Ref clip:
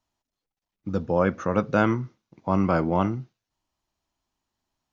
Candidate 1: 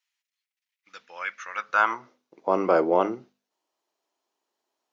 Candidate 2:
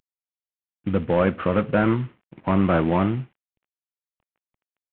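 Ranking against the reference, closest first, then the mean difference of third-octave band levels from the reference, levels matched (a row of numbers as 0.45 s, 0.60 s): 2, 1; 3.5 dB, 9.0 dB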